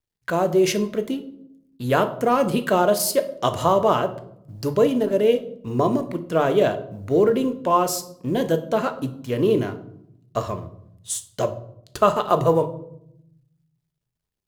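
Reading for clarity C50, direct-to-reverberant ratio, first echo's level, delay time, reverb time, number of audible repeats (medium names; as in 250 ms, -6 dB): 14.0 dB, 8.0 dB, no echo, no echo, 0.75 s, no echo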